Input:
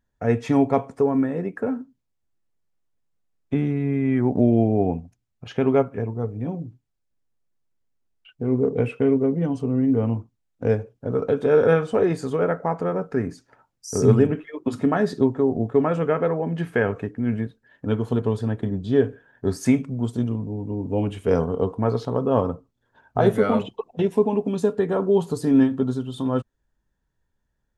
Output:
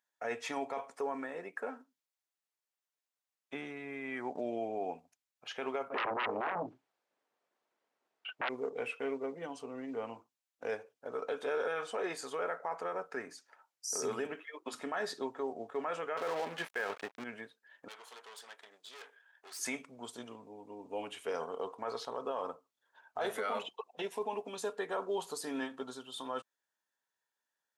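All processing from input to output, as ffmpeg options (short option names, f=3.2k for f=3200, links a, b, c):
-filter_complex "[0:a]asettb=1/sr,asplit=3[a][b][c];[a]atrim=end=5.904[d];[b]atrim=start=5.9:end=8.49,asetpts=PTS-STARTPTS,afade=t=in:d=0.004:c=qsin,afade=t=out:st=2.586:d=0.004:c=qsin,bandpass=f=360:t=q:w=0.62,aeval=exprs='0.211*sin(PI/2*8.91*val(0)/0.211)':c=same[e];[c]atrim=start=8.486[f];[d][e]acrossfade=d=0.004:c1=hsin:c2=qsin[g];[g][f]acrossfade=d=0.004:c1=qsin:c2=hsin,asettb=1/sr,asplit=3[h][i][j];[h]atrim=end=16.174[k];[i]atrim=start=16.17:end=17.24,asetpts=PTS-STARTPTS,afade=t=in:d=0.004:c=qsin,afade=t=out:st=1.066:d=0.004:c=qsin,acontrast=43,aeval=exprs='sgn(val(0))*max(abs(val(0))-0.0224,0)':c=same[l];[j]atrim=start=17.236[m];[k][l]acrossfade=d=0.004:c1=hsin:c2=qsin[n];[n][m]acrossfade=d=0.004:c1=qsin:c2=hsin,asettb=1/sr,asplit=3[o][p][q];[o]atrim=end=17.884[r];[p]atrim=start=17.88:end=19.59,asetpts=PTS-STARTPTS,afade=t=in:d=0.004:c=qsin,afade=t=out:st=1.706:d=0.004:c=qsin,highpass=720,highshelf=f=2.7k:g=4,aeval=exprs='(tanh(89.1*val(0)+0.75)-tanh(0.75))/89.1':c=same[s];[q]atrim=start=19.586[t];[r][s]acrossfade=d=0.004:c1=hsin:c2=qsin[u];[u][t]acrossfade=d=0.004:c1=qsin:c2=hsin,highpass=910,equalizer=f=1.4k:t=o:w=1.6:g=-2.5,alimiter=level_in=1dB:limit=-24dB:level=0:latency=1:release=17,volume=-1dB,volume=-1.5dB"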